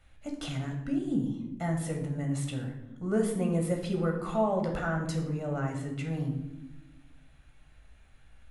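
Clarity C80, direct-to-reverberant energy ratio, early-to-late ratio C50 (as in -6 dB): 9.0 dB, 1.5 dB, 6.5 dB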